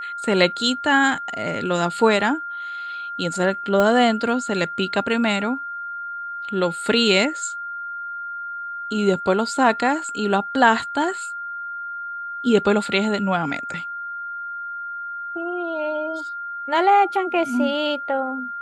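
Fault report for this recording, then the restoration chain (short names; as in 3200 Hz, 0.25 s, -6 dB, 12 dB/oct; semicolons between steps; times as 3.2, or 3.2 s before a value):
tone 1400 Hz -28 dBFS
3.8 pop -8 dBFS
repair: de-click; notch 1400 Hz, Q 30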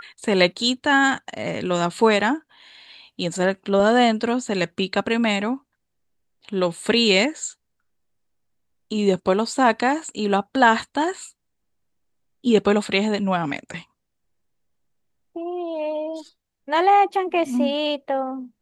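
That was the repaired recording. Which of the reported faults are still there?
3.8 pop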